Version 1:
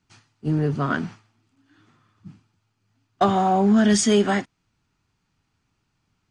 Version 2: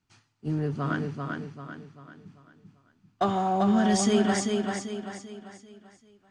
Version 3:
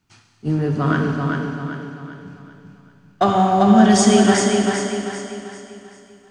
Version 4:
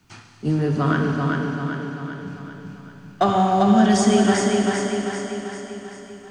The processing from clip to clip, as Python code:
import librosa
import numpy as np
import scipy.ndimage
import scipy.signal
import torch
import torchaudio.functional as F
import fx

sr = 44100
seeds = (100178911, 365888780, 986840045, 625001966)

y1 = fx.echo_feedback(x, sr, ms=391, feedback_pct=42, wet_db=-4)
y1 = y1 * librosa.db_to_amplitude(-6.5)
y2 = fx.rev_schroeder(y1, sr, rt60_s=2.2, comb_ms=32, drr_db=3.5)
y2 = y2 * librosa.db_to_amplitude(8.5)
y3 = fx.band_squash(y2, sr, depth_pct=40)
y3 = y3 * librosa.db_to_amplitude(-2.0)